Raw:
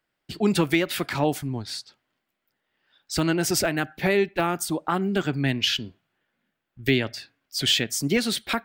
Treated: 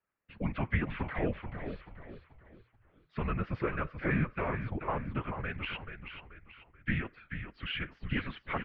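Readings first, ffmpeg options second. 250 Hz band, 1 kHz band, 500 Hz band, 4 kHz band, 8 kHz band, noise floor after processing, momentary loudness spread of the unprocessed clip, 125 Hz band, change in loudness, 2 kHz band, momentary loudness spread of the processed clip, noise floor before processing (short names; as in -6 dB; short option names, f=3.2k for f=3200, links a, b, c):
-11.5 dB, -8.5 dB, -13.0 dB, -20.0 dB, under -40 dB, -70 dBFS, 10 LU, -6.0 dB, -11.5 dB, -8.5 dB, 16 LU, -80 dBFS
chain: -filter_complex "[0:a]highpass=f=250:t=q:w=0.5412,highpass=f=250:t=q:w=1.307,lowpass=f=2.7k:t=q:w=0.5176,lowpass=f=2.7k:t=q:w=0.7071,lowpass=f=2.7k:t=q:w=1.932,afreqshift=-220,afftfilt=real='hypot(re,im)*cos(2*PI*random(0))':imag='hypot(re,im)*sin(2*PI*random(1))':win_size=512:overlap=0.75,asplit=5[a][b][c][d][e];[b]adelay=433,afreqshift=-40,volume=-8dB[f];[c]adelay=866,afreqshift=-80,volume=-16.4dB[g];[d]adelay=1299,afreqshift=-120,volume=-24.8dB[h];[e]adelay=1732,afreqshift=-160,volume=-33.2dB[i];[a][f][g][h][i]amix=inputs=5:normalize=0,volume=-2dB"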